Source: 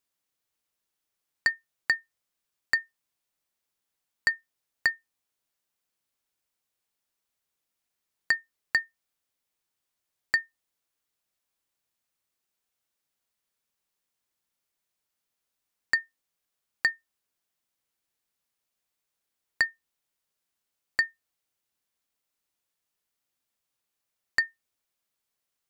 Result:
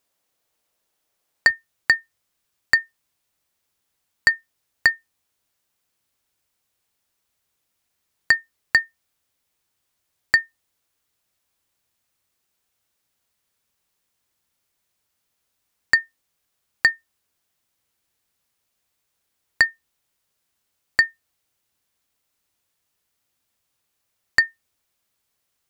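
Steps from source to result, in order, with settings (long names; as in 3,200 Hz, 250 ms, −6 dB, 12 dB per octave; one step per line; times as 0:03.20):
parametric band 600 Hz +6.5 dB 1.2 octaves, from 0:01.50 82 Hz
level +8 dB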